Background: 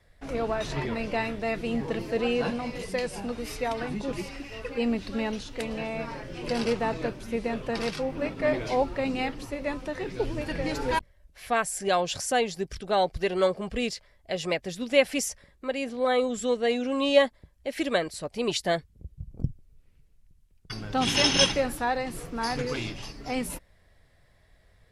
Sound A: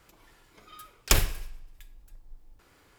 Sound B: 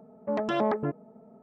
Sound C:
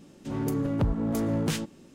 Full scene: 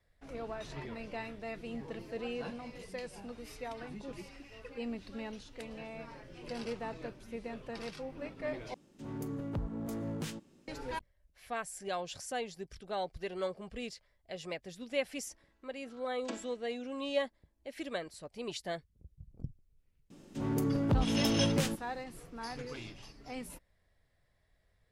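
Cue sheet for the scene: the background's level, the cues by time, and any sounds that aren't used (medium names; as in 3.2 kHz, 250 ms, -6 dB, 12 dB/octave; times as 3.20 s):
background -12.5 dB
8.74 s: replace with C -11 dB
15.17 s: add A -16.5 dB + vocoder on a held chord major triad, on A3
20.10 s: add C -3 dB
not used: B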